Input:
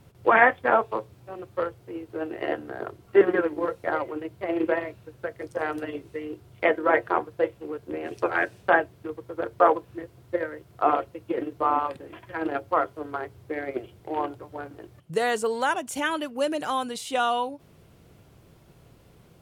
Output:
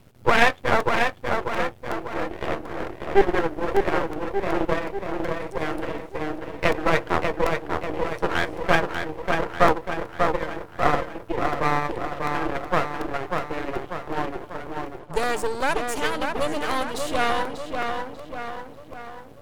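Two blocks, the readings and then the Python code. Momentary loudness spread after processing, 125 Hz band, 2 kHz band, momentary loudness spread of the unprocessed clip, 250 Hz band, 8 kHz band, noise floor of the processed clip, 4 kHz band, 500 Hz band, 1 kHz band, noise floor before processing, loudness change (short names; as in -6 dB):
12 LU, +11.5 dB, +2.0 dB, 16 LU, +2.0 dB, n/a, -44 dBFS, +6.0 dB, +1.0 dB, +1.5 dB, -55 dBFS, +1.0 dB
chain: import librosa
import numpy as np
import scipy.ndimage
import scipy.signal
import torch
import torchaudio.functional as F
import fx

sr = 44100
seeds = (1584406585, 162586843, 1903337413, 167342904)

y = fx.echo_filtered(x, sr, ms=592, feedback_pct=55, hz=2700.0, wet_db=-4)
y = np.maximum(y, 0.0)
y = fx.buffer_crackle(y, sr, first_s=0.8, period_s=0.37, block=128, kind='repeat')
y = F.gain(torch.from_numpy(y), 4.5).numpy()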